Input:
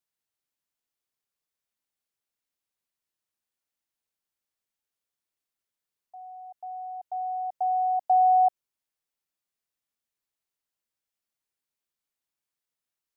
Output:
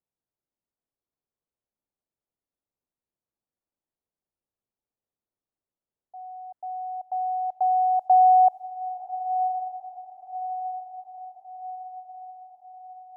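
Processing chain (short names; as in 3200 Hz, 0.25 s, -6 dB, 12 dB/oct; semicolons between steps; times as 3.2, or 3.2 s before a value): low-pass opened by the level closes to 710 Hz, open at -24.5 dBFS; on a send: diffused feedback echo 1.075 s, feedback 56%, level -10 dB; on the sum: gain +4 dB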